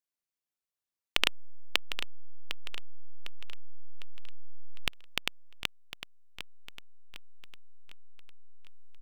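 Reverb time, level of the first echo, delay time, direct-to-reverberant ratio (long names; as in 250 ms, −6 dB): no reverb audible, −11.0 dB, 754 ms, no reverb audible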